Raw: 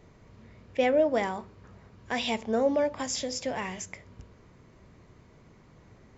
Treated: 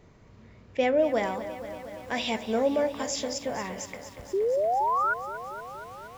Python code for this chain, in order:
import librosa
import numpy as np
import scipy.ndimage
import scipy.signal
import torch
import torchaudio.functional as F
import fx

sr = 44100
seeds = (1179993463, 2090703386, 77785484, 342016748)

y = fx.lowpass(x, sr, hz=2100.0, slope=12, at=(3.38, 3.78))
y = fx.spec_paint(y, sr, seeds[0], shape='rise', start_s=4.33, length_s=0.81, low_hz=370.0, high_hz=1500.0, level_db=-25.0)
y = fx.echo_crushed(y, sr, ms=235, feedback_pct=80, bits=8, wet_db=-13)